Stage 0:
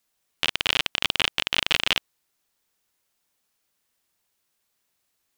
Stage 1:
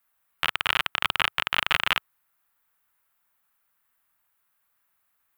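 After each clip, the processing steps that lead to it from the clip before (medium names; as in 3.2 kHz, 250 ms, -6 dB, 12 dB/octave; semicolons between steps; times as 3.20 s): FFT filter 100 Hz 0 dB, 400 Hz -7 dB, 1.3 kHz +9 dB, 5.7 kHz -11 dB, 14 kHz +6 dB; trim -1 dB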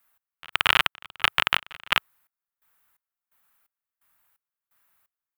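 trance gate "xx....xx" 172 bpm -24 dB; trim +4.5 dB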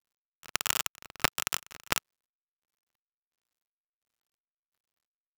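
dead-time distortion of 0.17 ms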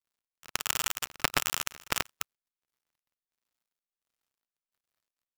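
chunks repeated in reverse 131 ms, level -1.5 dB; trim -1.5 dB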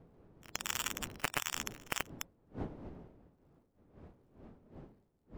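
coarse spectral quantiser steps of 15 dB; wind noise 330 Hz -46 dBFS; saturation -5 dBFS, distortion -19 dB; trim -6 dB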